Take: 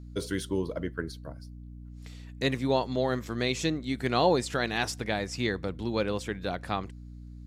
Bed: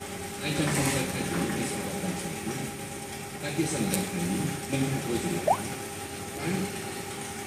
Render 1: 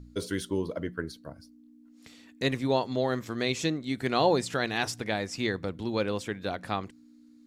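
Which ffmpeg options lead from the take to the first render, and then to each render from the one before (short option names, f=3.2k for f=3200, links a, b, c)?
-af "bandreject=f=60:t=h:w=4,bandreject=f=120:t=h:w=4,bandreject=f=180:t=h:w=4"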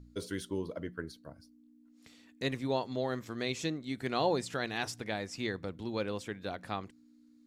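-af "volume=-6dB"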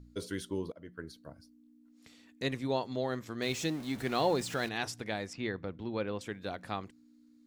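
-filter_complex "[0:a]asettb=1/sr,asplit=3[a][b][c];[a]atrim=end=3.424[d];[b]atrim=start=3.42:end=4.69,asetpts=PTS-STARTPTS,afade=t=in:d=0.004:c=qsin,afade=t=out:st=1.266:d=0.004:c=qsin,aeval=exprs='val(0)+0.5*0.00841*sgn(val(0))':c=same[e];[c]atrim=start=4.686[f];[d][e]acrossfade=d=0.004:c1=hsin:c2=qsin[g];[g][f]acrossfade=d=0.004:c1=qsin:c2=hsin,asettb=1/sr,asplit=3[h][i][j];[h]atrim=end=5.334[k];[i]atrim=start=5.33:end=6.21,asetpts=PTS-STARTPTS,afade=t=in:d=0.004:c=qsin,afade=t=out:st=0.876:d=0.004:c=qsin,lowpass=3.1k[l];[j]atrim=start=6.206[m];[k][l]acrossfade=d=0.004:c1=hsin:c2=qsin[n];[n][m]acrossfade=d=0.004:c1=qsin:c2=hsin,asplit=2[o][p];[o]atrim=end=0.72,asetpts=PTS-STARTPTS,afade=t=out:st=0.716:d=0.004:c=hsin:silence=0.11885[q];[p]atrim=start=0.72,asetpts=PTS-STARTPTS,afade=t=in:d=0.47:silence=0.11885[r];[q][r]concat=n=2:v=0:a=1"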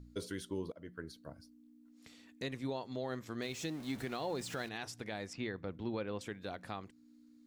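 -af "alimiter=level_in=4.5dB:limit=-24dB:level=0:latency=1:release=378,volume=-4.5dB"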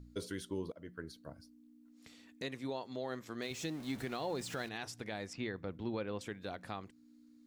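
-filter_complex "[0:a]asettb=1/sr,asplit=3[a][b][c];[a]atrim=end=2.424[d];[b]atrim=start=2.42:end=3.51,asetpts=PTS-STARTPTS,afade=t=in:d=0.004:c=qsin,afade=t=out:st=1.086:d=0.004:c=qsin,highpass=f=190:p=1[e];[c]atrim=start=3.506[f];[d][e]acrossfade=d=0.004:c1=hsin:c2=qsin[g];[g][f]acrossfade=d=0.004:c1=qsin:c2=hsin"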